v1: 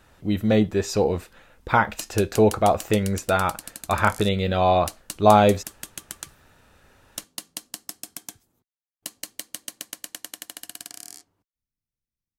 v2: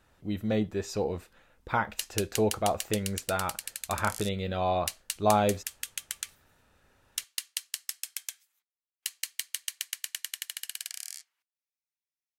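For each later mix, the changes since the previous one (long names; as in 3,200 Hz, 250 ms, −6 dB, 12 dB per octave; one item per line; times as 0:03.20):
speech −9.0 dB
background: add high-pass with resonance 2,100 Hz, resonance Q 1.6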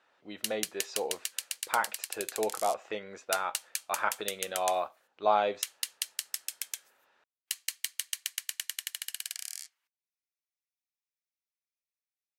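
speech: add band-pass filter 530–4,400 Hz
background: entry −1.55 s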